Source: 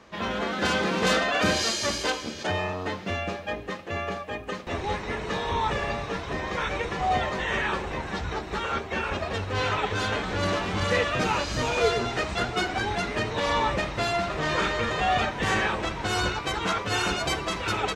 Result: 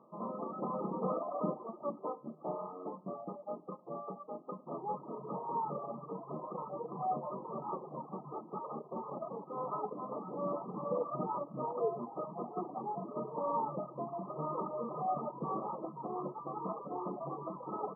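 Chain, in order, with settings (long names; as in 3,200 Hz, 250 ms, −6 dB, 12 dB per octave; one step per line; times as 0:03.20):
coupled-rooms reverb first 0.52 s, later 4.1 s, from −18 dB, DRR 7 dB
reverb reduction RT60 0.94 s
brick-wall band-pass 130–1,300 Hz
level −8.5 dB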